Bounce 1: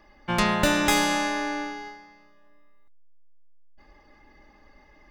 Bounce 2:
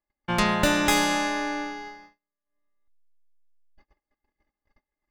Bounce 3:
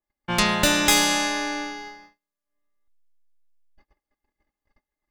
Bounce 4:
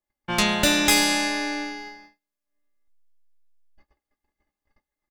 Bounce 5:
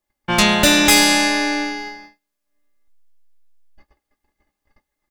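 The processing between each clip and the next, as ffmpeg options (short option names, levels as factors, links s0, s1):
-af "agate=range=0.0178:threshold=0.00355:ratio=16:detection=peak"
-af "adynamicequalizer=threshold=0.0112:dfrequency=2400:dqfactor=0.7:tfrequency=2400:tqfactor=0.7:attack=5:release=100:ratio=0.375:range=4:mode=boostabove:tftype=highshelf"
-af "aecho=1:1:14|30:0.355|0.15,volume=0.891"
-af "asoftclip=type=tanh:threshold=0.251,volume=2.51"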